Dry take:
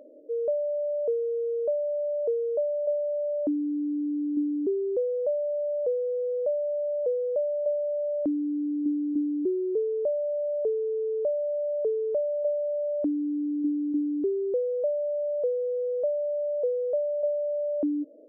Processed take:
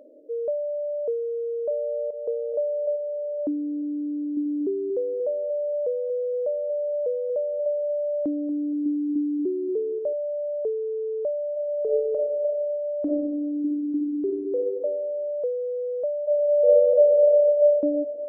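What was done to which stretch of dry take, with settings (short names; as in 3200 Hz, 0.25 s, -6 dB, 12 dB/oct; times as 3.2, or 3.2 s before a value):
1.27–2.09 echo throw 0.43 s, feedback 50%, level -7 dB
4.22–10.13 feedback echo 0.235 s, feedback 29%, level -13 dB
11.52–14.73 reverb throw, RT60 1.2 s, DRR 0 dB
16.23–17.57 reverb throw, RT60 2.3 s, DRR -9.5 dB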